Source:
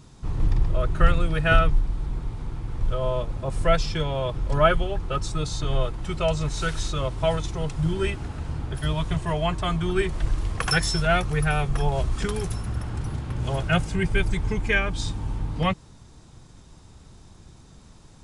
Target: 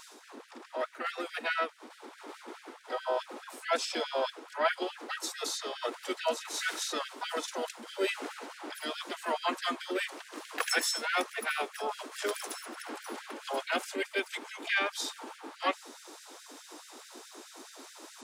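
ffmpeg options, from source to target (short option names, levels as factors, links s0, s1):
-filter_complex "[0:a]asplit=4[s0][s1][s2][s3];[s1]asetrate=52444,aresample=44100,atempo=0.840896,volume=0.141[s4];[s2]asetrate=55563,aresample=44100,atempo=0.793701,volume=0.178[s5];[s3]asetrate=66075,aresample=44100,atempo=0.66742,volume=0.398[s6];[s0][s4][s5][s6]amix=inputs=4:normalize=0,areverse,acompressor=threshold=0.0224:ratio=5,areverse,lowshelf=f=130:t=q:w=3:g=-7.5,afftfilt=real='re*gte(b*sr/1024,230*pow(1500/230,0.5+0.5*sin(2*PI*4.7*pts/sr)))':imag='im*gte(b*sr/1024,230*pow(1500/230,0.5+0.5*sin(2*PI*4.7*pts/sr)))':win_size=1024:overlap=0.75,volume=2.37"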